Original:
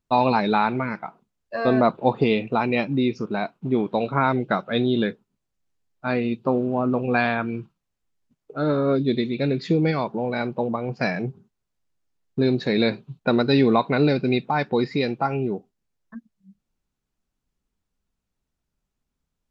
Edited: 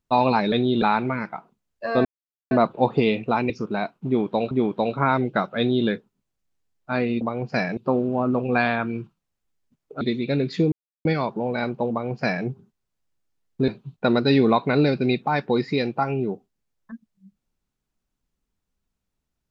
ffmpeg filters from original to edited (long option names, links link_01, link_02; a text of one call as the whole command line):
ffmpeg -i in.wav -filter_complex "[0:a]asplit=11[link_01][link_02][link_03][link_04][link_05][link_06][link_07][link_08][link_09][link_10][link_11];[link_01]atrim=end=0.522[link_12];[link_02]atrim=start=4.728:end=5.032[link_13];[link_03]atrim=start=0.518:end=1.75,asetpts=PTS-STARTPTS,afade=type=out:start_time=1.228:duration=0.004:curve=hsin,apad=pad_dur=0.46[link_14];[link_04]atrim=start=1.75:end=2.742,asetpts=PTS-STARTPTS,afade=type=in:duration=0.004:curve=hsin[link_15];[link_05]atrim=start=3.098:end=4.112[link_16];[link_06]atrim=start=3.658:end=6.362[link_17];[link_07]atrim=start=10.678:end=11.242[link_18];[link_08]atrim=start=6.358:end=8.602[link_19];[link_09]atrim=start=9.118:end=9.83,asetpts=PTS-STARTPTS,afade=type=out:start_time=0.708:duration=0.004:curve=hsin,apad=pad_dur=0.33[link_20];[link_10]atrim=start=9.83:end=12.462,asetpts=PTS-STARTPTS,afade=type=in:duration=0.004:curve=hsin[link_21];[link_11]atrim=start=12.908[link_22];[link_12][link_13]acrossfade=duration=0.004:curve1=hsin:curve2=hsin[link_23];[link_14][link_15]concat=n=2:v=0:a=1[link_24];[link_23][link_24]acrossfade=duration=0.004:curve1=hsin:curve2=hsin[link_25];[link_25][link_16]acrossfade=duration=0.004:curve1=hsin:curve2=hsin[link_26];[link_26][link_17]acrossfade=duration=0.004:curve1=hsin:curve2=hsin[link_27];[link_27][link_18]acrossfade=duration=0.004:curve1=hsin:curve2=hsin[link_28];[link_28][link_19]acrossfade=duration=0.004:curve1=hsin:curve2=hsin[link_29];[link_20][link_21]concat=n=2:v=0:a=1[link_30];[link_29][link_30]acrossfade=duration=0.004:curve1=hsin:curve2=hsin[link_31];[link_31][link_22]acrossfade=duration=0.004:curve1=hsin:curve2=hsin" out.wav